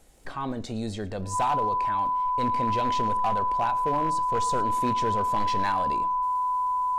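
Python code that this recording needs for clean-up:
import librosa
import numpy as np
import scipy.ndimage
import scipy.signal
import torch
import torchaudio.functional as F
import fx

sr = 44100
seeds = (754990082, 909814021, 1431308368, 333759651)

y = fx.fix_declip(x, sr, threshold_db=-19.0)
y = fx.fix_declick_ar(y, sr, threshold=6.5)
y = fx.notch(y, sr, hz=1000.0, q=30.0)
y = fx.fix_echo_inverse(y, sr, delay_ms=111, level_db=-21.0)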